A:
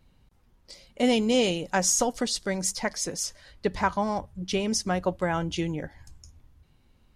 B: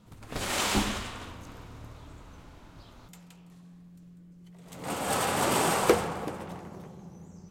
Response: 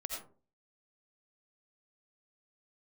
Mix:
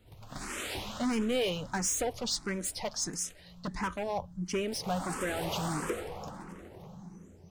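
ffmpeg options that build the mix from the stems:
-filter_complex "[0:a]volume=-1dB[link_01];[1:a]acompressor=threshold=-43dB:ratio=1.5,volume=-3.5dB,asplit=2[link_02][link_03];[link_03]volume=-4dB[link_04];[2:a]atrim=start_sample=2205[link_05];[link_04][link_05]afir=irnorm=-1:irlink=0[link_06];[link_01][link_02][link_06]amix=inputs=3:normalize=0,volume=25dB,asoftclip=hard,volume=-25dB,asplit=2[link_07][link_08];[link_08]afreqshift=1.5[link_09];[link_07][link_09]amix=inputs=2:normalize=1"

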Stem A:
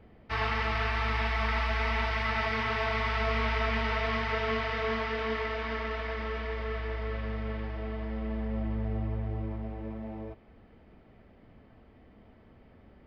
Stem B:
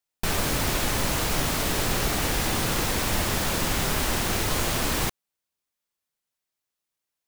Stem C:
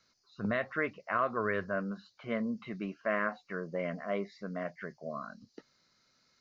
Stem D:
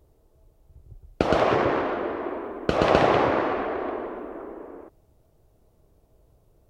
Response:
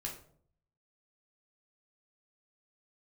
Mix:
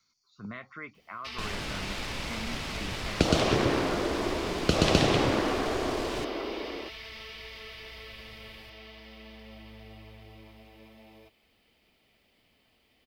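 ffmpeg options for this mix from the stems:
-filter_complex "[0:a]lowshelf=frequency=270:gain=-9,aexciter=amount=3.6:drive=7.9:freq=2300,acrossover=split=390[link_01][link_02];[link_02]acompressor=threshold=-34dB:ratio=4[link_03];[link_01][link_03]amix=inputs=2:normalize=0,adelay=950,volume=-10.5dB[link_04];[1:a]adynamicsmooth=sensitivity=2:basefreq=2700,adelay=1150,volume=-11dB[link_05];[2:a]aecho=1:1:0.9:0.57,alimiter=limit=-23dB:level=0:latency=1:release=317,volume=-8dB[link_06];[3:a]adelay=2000,volume=3dB[link_07];[link_04][link_05][link_06][link_07]amix=inputs=4:normalize=0,highshelf=frequency=2800:gain=8.5,acrossover=split=310|3000[link_08][link_09][link_10];[link_09]acompressor=threshold=-32dB:ratio=3[link_11];[link_08][link_11][link_10]amix=inputs=3:normalize=0"

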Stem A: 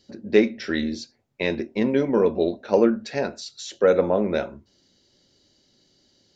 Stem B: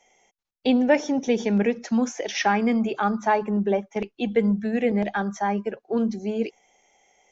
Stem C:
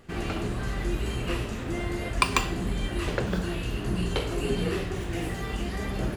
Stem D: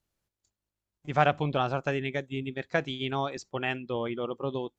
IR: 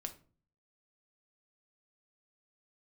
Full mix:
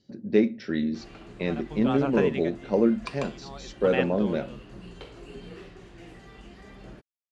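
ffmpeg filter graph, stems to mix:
-filter_complex "[0:a]equalizer=frequency=130:width=0.53:gain=13.5,volume=-9dB[link_01];[2:a]adelay=850,volume=-14.5dB[link_02];[3:a]aeval=exprs='val(0)*pow(10,-27*(0.5-0.5*cos(2*PI*0.54*n/s))/20)':channel_layout=same,adelay=300,volume=0.5dB[link_03];[link_01][link_02][link_03]amix=inputs=3:normalize=0,lowpass=6500,equalizer=frequency=76:width=1.8:gain=-9"

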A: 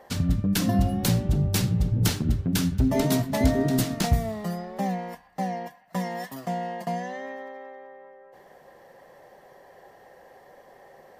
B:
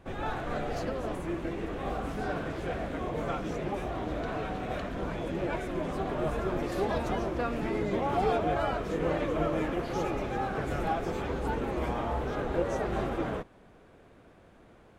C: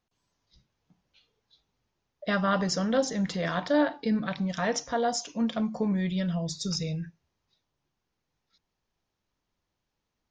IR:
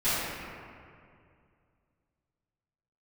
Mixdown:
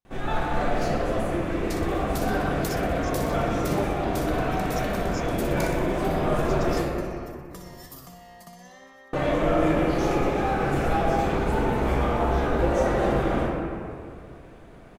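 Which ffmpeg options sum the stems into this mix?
-filter_complex "[0:a]acompressor=threshold=-32dB:ratio=6,equalizer=frequency=1200:width=3.8:gain=13,acrossover=split=130|3000[link_01][link_02][link_03];[link_02]acompressor=threshold=-53dB:ratio=2.5[link_04];[link_01][link_04][link_03]amix=inputs=3:normalize=0,adelay=1600,volume=-2dB,asplit=2[link_05][link_06];[link_06]volume=-7.5dB[link_07];[1:a]adelay=50,volume=0dB,asplit=3[link_08][link_09][link_10];[link_08]atrim=end=6.82,asetpts=PTS-STARTPTS,afade=type=out:start_time=6.816:duration=0.004:curve=hsin[link_11];[link_09]atrim=start=6.82:end=9.13,asetpts=PTS-STARTPTS,volume=0[link_12];[link_10]atrim=start=9.13,asetpts=PTS-STARTPTS,afade=type=in:duration=0.004:curve=hsin[link_13];[link_11][link_12][link_13]concat=n=3:v=0:a=1,asplit=2[link_14][link_15];[link_15]volume=-7.5dB[link_16];[2:a]volume=-13dB[link_17];[3:a]atrim=start_sample=2205[link_18];[link_16][link_18]afir=irnorm=-1:irlink=0[link_19];[link_07]aecho=0:1:61|122|183|244|305|366|427|488|549:1|0.58|0.336|0.195|0.113|0.0656|0.0381|0.0221|0.0128[link_20];[link_05][link_14][link_17][link_19][link_20]amix=inputs=5:normalize=0,highshelf=frequency=5500:gain=5.5"

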